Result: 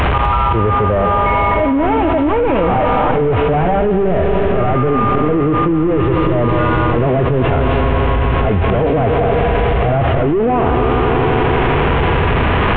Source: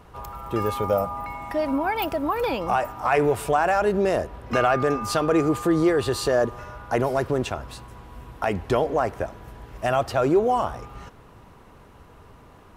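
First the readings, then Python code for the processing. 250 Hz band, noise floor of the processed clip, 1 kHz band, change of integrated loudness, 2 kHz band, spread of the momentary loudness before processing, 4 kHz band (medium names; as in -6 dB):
+11.0 dB, -14 dBFS, +10.0 dB, +9.5 dB, +10.0 dB, 17 LU, +8.0 dB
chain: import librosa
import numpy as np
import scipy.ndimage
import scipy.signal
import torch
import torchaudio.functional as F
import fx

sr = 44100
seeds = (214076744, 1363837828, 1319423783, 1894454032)

p1 = fx.delta_mod(x, sr, bps=16000, step_db=-38.0)
p2 = fx.peak_eq(p1, sr, hz=75.0, db=4.0, octaves=0.74)
p3 = fx.auto_swell(p2, sr, attack_ms=183.0)
p4 = p3 + fx.echo_heads(p3, sr, ms=84, heads='second and third', feedback_pct=74, wet_db=-13.0, dry=0)
p5 = fx.hpss(p4, sr, part='harmonic', gain_db=9)
p6 = fx.env_flatten(p5, sr, amount_pct=100)
y = p6 * 10.0 ** (-2.0 / 20.0)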